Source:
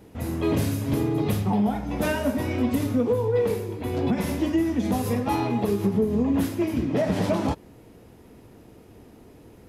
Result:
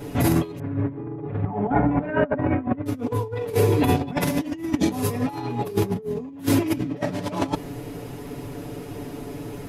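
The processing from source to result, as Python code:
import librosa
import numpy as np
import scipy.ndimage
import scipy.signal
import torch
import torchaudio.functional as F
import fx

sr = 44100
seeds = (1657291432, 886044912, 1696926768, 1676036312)

y = fx.lowpass(x, sr, hz=1800.0, slope=24, at=(0.59, 2.86))
y = y + 0.97 * np.pad(y, (int(7.0 * sr / 1000.0), 0))[:len(y)]
y = fx.over_compress(y, sr, threshold_db=-28.0, ratio=-0.5)
y = y * librosa.db_to_amplitude(5.0)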